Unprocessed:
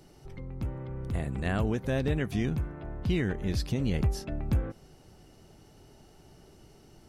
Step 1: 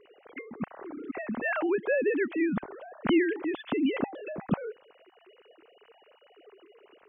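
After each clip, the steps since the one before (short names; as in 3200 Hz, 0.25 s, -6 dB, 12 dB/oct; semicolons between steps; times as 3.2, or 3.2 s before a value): sine-wave speech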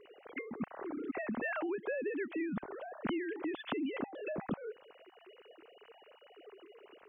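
compressor 8:1, threshold -34 dBFS, peak gain reduction 14.5 dB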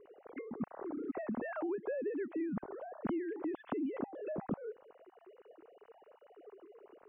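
LPF 1100 Hz 12 dB/oct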